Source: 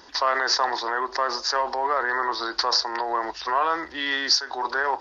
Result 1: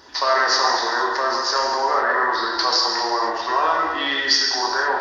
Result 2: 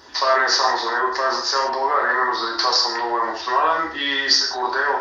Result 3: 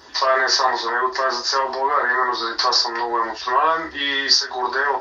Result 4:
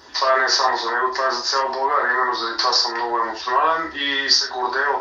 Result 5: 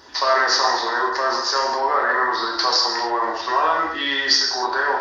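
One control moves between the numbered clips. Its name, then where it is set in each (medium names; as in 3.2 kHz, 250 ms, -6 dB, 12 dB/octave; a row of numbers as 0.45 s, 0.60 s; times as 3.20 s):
gated-style reverb, gate: 530 ms, 200 ms, 90 ms, 130 ms, 310 ms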